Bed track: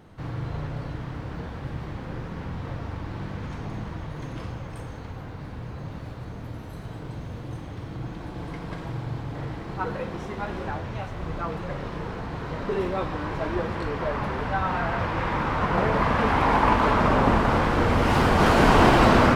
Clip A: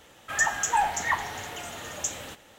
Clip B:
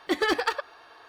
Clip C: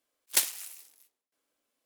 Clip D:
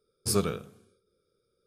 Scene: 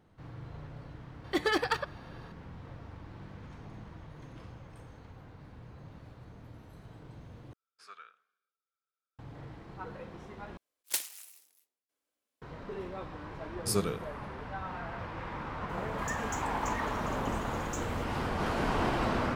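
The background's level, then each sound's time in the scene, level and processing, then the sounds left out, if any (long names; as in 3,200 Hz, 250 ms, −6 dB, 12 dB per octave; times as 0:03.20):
bed track −13.5 dB
0:01.24: mix in B −4 dB
0:07.53: overwrite with D −4 dB + four-pole ladder band-pass 1,700 Hz, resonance 50%
0:10.57: overwrite with C −7 dB
0:13.40: mix in D −3.5 dB
0:15.69: mix in A −17.5 dB + power curve on the samples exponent 0.7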